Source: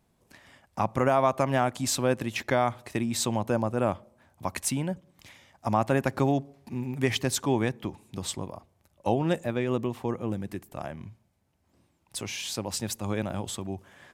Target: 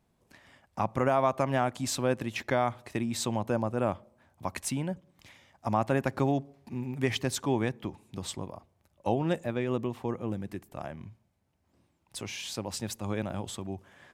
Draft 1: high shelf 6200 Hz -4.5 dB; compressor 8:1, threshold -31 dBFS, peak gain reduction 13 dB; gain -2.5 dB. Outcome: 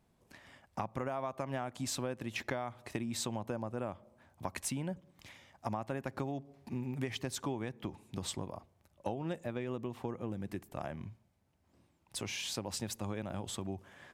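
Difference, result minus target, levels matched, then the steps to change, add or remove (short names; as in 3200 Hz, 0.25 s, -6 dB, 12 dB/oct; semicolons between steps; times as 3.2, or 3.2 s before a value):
compressor: peak gain reduction +13 dB
remove: compressor 8:1, threshold -31 dBFS, peak gain reduction 13 dB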